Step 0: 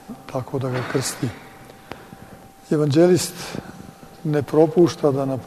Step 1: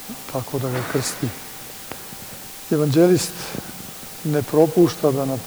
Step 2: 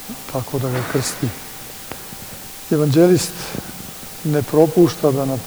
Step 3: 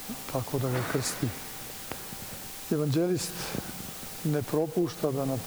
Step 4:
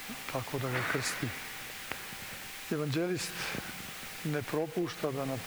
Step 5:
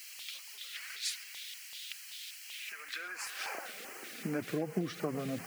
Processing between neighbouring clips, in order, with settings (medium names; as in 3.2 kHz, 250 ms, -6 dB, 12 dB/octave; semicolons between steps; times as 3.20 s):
added noise white -37 dBFS
bass shelf 85 Hz +5.5 dB; trim +2 dB
compression 6:1, threshold -17 dBFS, peak gain reduction 10.5 dB; trim -6.5 dB
peaking EQ 2.1 kHz +12.5 dB 1.7 oct; trim -6.5 dB
high-pass sweep 3.5 kHz -> 160 Hz, 2.41–4.52 s; flange 2 Hz, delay 2 ms, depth 3.1 ms, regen +35%; LFO notch square 2.6 Hz 910–3600 Hz; trim +1 dB